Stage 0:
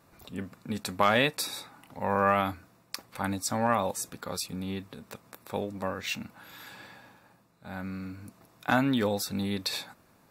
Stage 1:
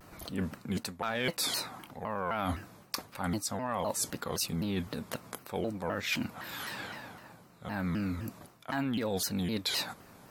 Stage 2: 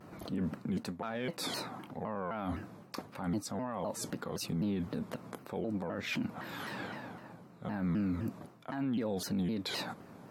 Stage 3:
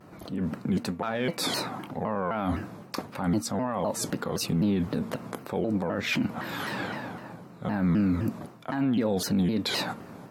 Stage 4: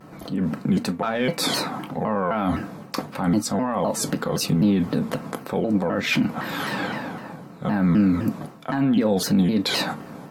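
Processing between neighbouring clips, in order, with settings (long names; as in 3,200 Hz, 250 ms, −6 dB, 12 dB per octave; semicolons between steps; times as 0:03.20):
reversed playback; downward compressor 12 to 1, threshold −36 dBFS, peak gain reduction 19 dB; reversed playback; soft clipping −25 dBFS, distortion −26 dB; pitch modulation by a square or saw wave saw down 3.9 Hz, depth 250 cents; level +7.5 dB
high-pass filter 170 Hz 12 dB per octave; spectral tilt −3 dB per octave; brickwall limiter −27 dBFS, peak gain reduction 8.5 dB
hum removal 229.8 Hz, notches 13; automatic gain control gain up to 7 dB; level +1.5 dB
convolution reverb, pre-delay 4 ms, DRR 9.5 dB; level +5 dB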